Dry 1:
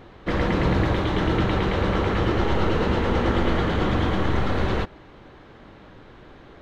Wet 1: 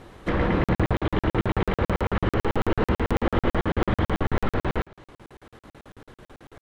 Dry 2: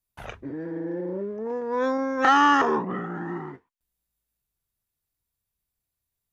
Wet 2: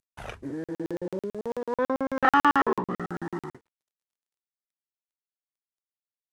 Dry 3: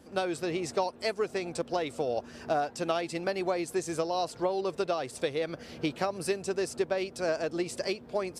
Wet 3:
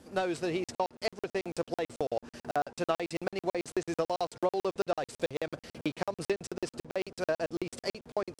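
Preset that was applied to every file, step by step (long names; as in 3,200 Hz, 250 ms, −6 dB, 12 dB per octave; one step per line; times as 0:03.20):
variable-slope delta modulation 64 kbit/s
treble cut that deepens with the level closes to 2,800 Hz, closed at −21.5 dBFS
regular buffer underruns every 0.11 s, samples 2,048, zero, from 0:00.64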